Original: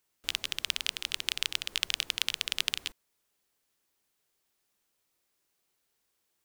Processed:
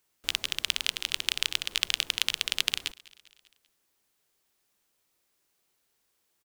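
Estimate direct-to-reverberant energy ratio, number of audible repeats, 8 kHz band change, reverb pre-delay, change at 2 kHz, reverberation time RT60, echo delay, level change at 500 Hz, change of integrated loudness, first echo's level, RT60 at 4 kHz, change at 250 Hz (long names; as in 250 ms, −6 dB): no reverb audible, 3, +3.0 dB, no reverb audible, +3.0 dB, no reverb audible, 197 ms, +3.0 dB, +3.0 dB, −23.5 dB, no reverb audible, +3.0 dB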